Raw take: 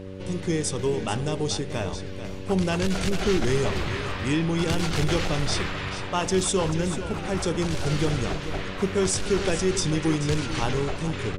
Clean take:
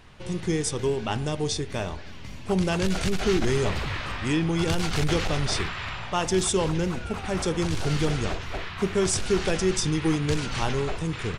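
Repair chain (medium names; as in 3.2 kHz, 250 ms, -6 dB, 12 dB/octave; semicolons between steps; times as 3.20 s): de-hum 95 Hz, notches 6; inverse comb 438 ms -11.5 dB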